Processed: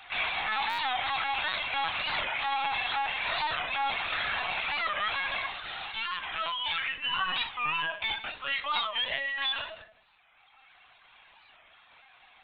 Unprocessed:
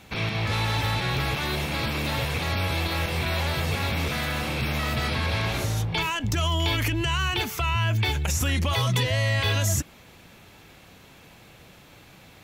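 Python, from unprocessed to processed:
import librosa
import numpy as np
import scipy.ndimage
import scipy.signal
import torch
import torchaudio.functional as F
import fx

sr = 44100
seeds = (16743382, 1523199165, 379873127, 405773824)

p1 = fx.envelope_flatten(x, sr, power=0.1, at=(5.48, 6.5), fade=0.02)
p2 = scipy.signal.sosfilt(scipy.signal.butter(4, 770.0, 'highpass', fs=sr, output='sos'), p1)
p3 = fx.dereverb_blind(p2, sr, rt60_s=2.0)
p4 = fx.rider(p3, sr, range_db=10, speed_s=0.5)
p5 = 10.0 ** (-27.5 / 20.0) * np.tanh(p4 / 10.0 ** (-27.5 / 20.0))
p6 = p5 + fx.echo_single(p5, sr, ms=157, db=-16.0, dry=0)
p7 = fx.room_shoebox(p6, sr, seeds[0], volume_m3=280.0, walls='furnished', distance_m=2.2)
p8 = fx.lpc_vocoder(p7, sr, seeds[1], excitation='pitch_kept', order=16)
p9 = fx.buffer_glitch(p8, sr, at_s=(0.69,), block=512, repeats=8)
y = fx.record_warp(p9, sr, rpm=45.0, depth_cents=160.0)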